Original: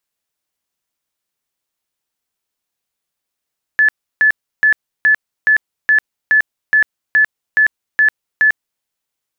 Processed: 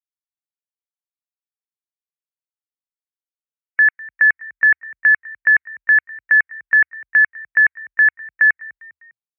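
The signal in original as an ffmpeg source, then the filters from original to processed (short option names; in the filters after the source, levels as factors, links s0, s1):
-f lavfi -i "aevalsrc='0.422*sin(2*PI*1730*mod(t,0.42))*lt(mod(t,0.42),167/1730)':d=5.04:s=44100"
-filter_complex "[0:a]afftdn=nr=30:nf=-31,asplit=4[s0][s1][s2][s3];[s1]adelay=201,afreqshift=37,volume=0.0794[s4];[s2]adelay=402,afreqshift=74,volume=0.038[s5];[s3]adelay=603,afreqshift=111,volume=0.0182[s6];[s0][s4][s5][s6]amix=inputs=4:normalize=0"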